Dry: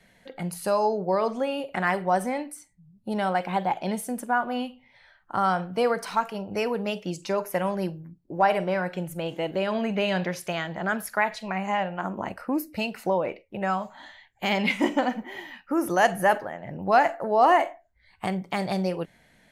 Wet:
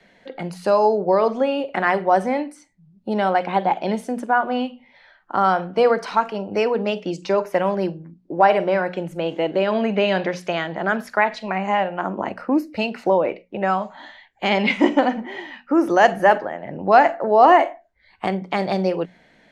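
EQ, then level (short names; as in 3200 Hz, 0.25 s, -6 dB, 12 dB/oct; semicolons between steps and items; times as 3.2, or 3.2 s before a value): three-band isolator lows -15 dB, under 240 Hz, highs -21 dB, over 6300 Hz; low shelf 390 Hz +9 dB; notches 60/120/180/240 Hz; +4.5 dB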